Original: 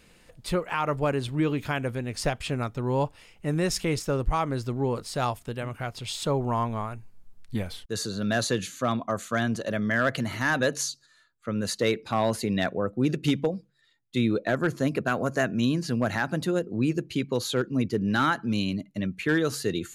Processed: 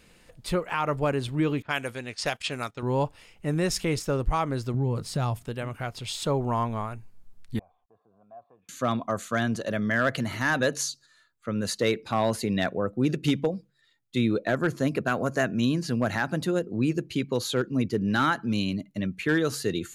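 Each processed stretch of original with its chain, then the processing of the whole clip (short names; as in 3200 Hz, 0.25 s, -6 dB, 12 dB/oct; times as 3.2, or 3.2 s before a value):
1.62–2.83 gate -37 dBFS, range -12 dB + low-pass opened by the level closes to 1200 Hz, open at -23.5 dBFS + tilt +3 dB/oct
4.74–5.46 bell 130 Hz +11.5 dB 1.5 oct + compressor 2.5:1, threshold -24 dBFS
7.59–8.69 compressor 2:1, threshold -38 dBFS + vocal tract filter a
whole clip: dry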